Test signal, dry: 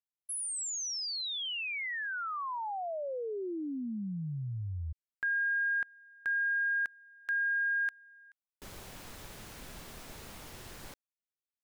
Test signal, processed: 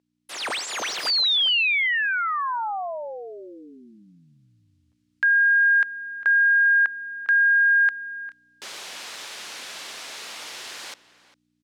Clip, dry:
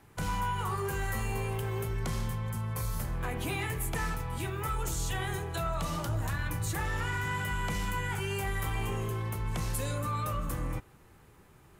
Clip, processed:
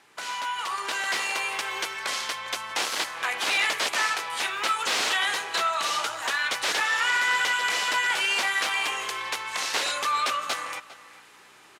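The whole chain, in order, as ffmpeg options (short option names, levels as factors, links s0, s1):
-filter_complex "[0:a]acrossover=split=680[s0][s1];[s0]acompressor=threshold=0.00501:ratio=6:release=876:detection=rms[s2];[s2][s1]amix=inputs=2:normalize=0,aeval=exprs='val(0)+0.00126*(sin(2*PI*60*n/s)+sin(2*PI*2*60*n/s)/2+sin(2*PI*3*60*n/s)/3+sin(2*PI*4*60*n/s)/4+sin(2*PI*5*60*n/s)/5)':c=same,crystalizer=i=7:c=0,aeval=exprs='(mod(9.44*val(0)+1,2)-1)/9.44':c=same,highpass=400,lowpass=4100,asplit=2[s3][s4];[s4]adelay=402.3,volume=0.158,highshelf=f=4000:g=-9.05[s5];[s3][s5]amix=inputs=2:normalize=0,dynaudnorm=f=380:g=5:m=2.24"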